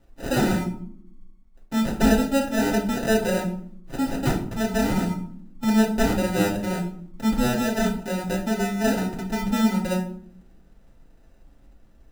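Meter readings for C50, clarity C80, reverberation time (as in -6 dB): 8.5 dB, 12.0 dB, 0.60 s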